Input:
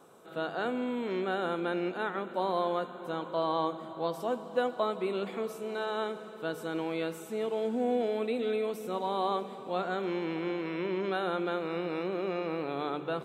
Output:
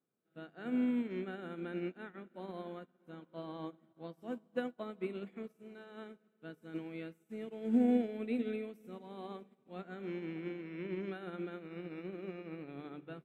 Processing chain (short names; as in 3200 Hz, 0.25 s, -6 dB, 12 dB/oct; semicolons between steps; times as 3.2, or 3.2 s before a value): graphic EQ 125/250/500/1000/2000/4000/8000 Hz +5/+6/-4/-10/+5/-7/-4 dB; upward expander 2.5:1, over -46 dBFS; gain +1 dB